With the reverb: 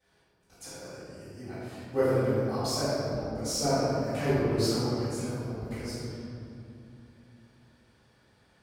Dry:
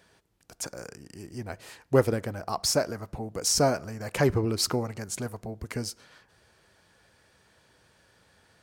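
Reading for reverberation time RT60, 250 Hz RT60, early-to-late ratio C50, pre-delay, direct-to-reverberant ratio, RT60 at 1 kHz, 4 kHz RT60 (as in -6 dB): 2.6 s, 4.0 s, -5.5 dB, 3 ms, -19.0 dB, 2.4 s, 1.5 s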